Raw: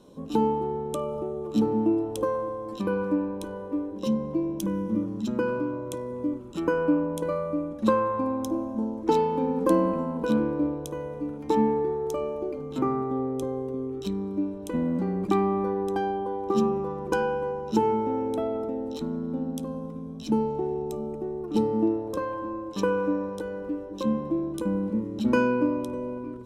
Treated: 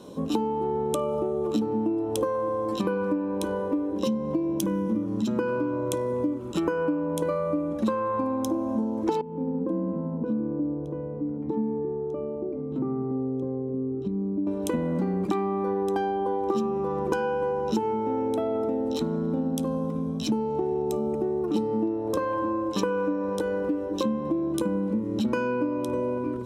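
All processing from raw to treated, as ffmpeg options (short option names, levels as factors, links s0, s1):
-filter_complex "[0:a]asettb=1/sr,asplit=3[s0][s1][s2];[s0]atrim=end=9.214[s3];[s1]atrim=start=9.21:end=14.47,asetpts=PTS-STARTPTS,afade=t=in:d=0.004:c=qsin,afade=t=out:st=5.256:d=0.004:c=qsin,acompressor=threshold=0.0251:ratio=2:attack=3.2:release=140:knee=1:detection=peak,bandpass=f=170:t=q:w=0.89[s4];[s2]atrim=start=14.466[s5];[s3][s4]acrossfade=d=0.004:c1=hsin:c2=qsin[s6];[s6][s5]acrossfade=d=0.004:c1=qsin:c2=hsin,highpass=66,bandreject=f=50:t=h:w=6,bandreject=f=100:t=h:w=6,bandreject=f=150:t=h:w=6,bandreject=f=200:t=h:w=6,bandreject=f=250:t=h:w=6,acompressor=threshold=0.0251:ratio=10,volume=2.82"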